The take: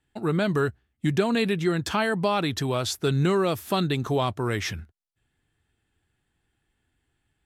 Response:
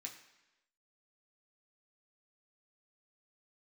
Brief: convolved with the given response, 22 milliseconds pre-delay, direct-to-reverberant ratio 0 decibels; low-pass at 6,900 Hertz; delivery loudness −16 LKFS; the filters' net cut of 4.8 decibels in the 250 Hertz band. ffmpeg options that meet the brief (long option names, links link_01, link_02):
-filter_complex "[0:a]lowpass=6900,equalizer=frequency=250:width_type=o:gain=-7.5,asplit=2[link_01][link_02];[1:a]atrim=start_sample=2205,adelay=22[link_03];[link_02][link_03]afir=irnorm=-1:irlink=0,volume=4dB[link_04];[link_01][link_04]amix=inputs=2:normalize=0,volume=9.5dB"